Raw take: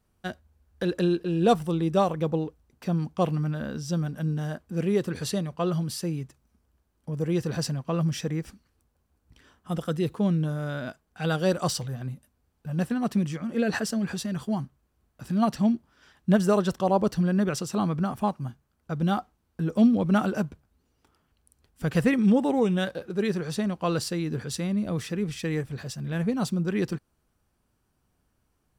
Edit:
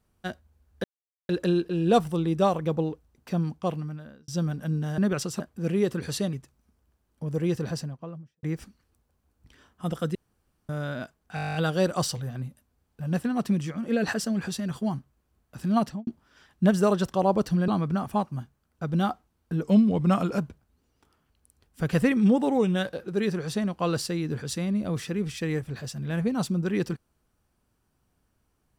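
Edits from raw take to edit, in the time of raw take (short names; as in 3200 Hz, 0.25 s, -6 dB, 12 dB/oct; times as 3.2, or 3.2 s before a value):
0.84 insert silence 0.45 s
2.91–3.83 fade out
5.46–6.19 cut
7.29–8.29 studio fade out
10.01–10.55 room tone
11.21 stutter 0.02 s, 11 plays
15.47–15.73 studio fade out
17.34–17.76 move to 4.53
19.71–20.4 speed 92%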